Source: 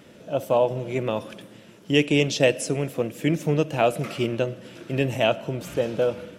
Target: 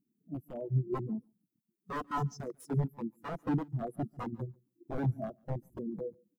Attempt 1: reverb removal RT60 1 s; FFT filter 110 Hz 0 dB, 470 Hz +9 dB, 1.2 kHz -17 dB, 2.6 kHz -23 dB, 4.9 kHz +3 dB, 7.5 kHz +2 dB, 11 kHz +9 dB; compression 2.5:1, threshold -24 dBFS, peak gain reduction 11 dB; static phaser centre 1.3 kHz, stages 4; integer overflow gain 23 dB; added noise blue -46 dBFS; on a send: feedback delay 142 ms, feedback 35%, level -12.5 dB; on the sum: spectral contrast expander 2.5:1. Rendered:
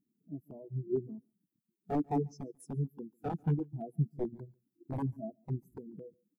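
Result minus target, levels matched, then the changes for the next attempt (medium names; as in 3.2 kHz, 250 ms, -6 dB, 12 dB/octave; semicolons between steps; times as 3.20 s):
compression: peak gain reduction +4 dB
change: compression 2.5:1, threshold -17 dBFS, peak gain reduction 7 dB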